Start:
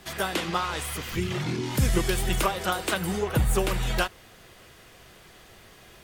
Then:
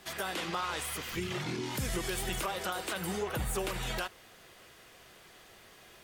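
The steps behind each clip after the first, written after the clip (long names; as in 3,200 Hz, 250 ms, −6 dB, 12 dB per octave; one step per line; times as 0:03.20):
low-shelf EQ 190 Hz −9 dB
brickwall limiter −20.5 dBFS, peak gain reduction 8 dB
level −3.5 dB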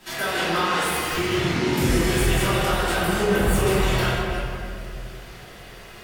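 delay that plays each chunk backwards 190 ms, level −7.5 dB
convolution reverb RT60 2.3 s, pre-delay 3 ms, DRR −12 dB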